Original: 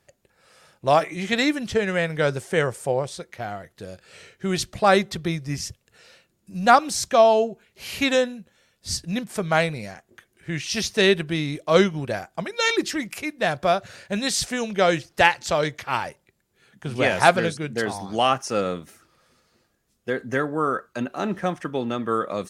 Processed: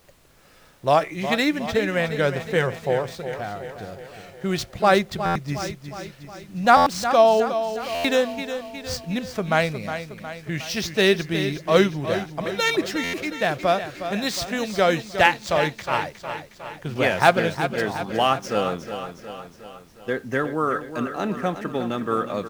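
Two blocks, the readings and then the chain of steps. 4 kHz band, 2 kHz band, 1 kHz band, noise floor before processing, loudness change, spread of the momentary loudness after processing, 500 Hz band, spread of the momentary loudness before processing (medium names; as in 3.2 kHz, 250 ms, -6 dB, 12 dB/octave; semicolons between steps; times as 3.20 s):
-0.5 dB, +0.5 dB, +1.0 dB, -70 dBFS, 0.0 dB, 16 LU, +0.5 dB, 16 LU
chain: median filter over 5 samples; added noise pink -57 dBFS; on a send: feedback delay 362 ms, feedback 56%, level -10 dB; on the sum: buffer glitch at 5.25/6.76/7.94/13.03 s, samples 512, times 8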